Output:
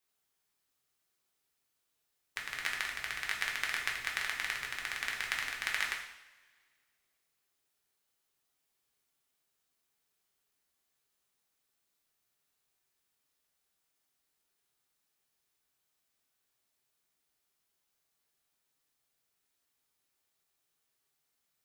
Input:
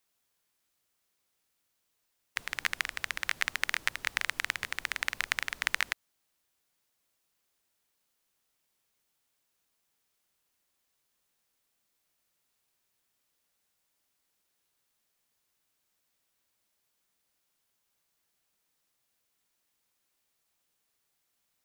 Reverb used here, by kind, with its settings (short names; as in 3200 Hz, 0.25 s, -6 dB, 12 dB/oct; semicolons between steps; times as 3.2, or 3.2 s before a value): two-slope reverb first 0.72 s, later 2 s, from -19 dB, DRR -1.5 dB; gain -6.5 dB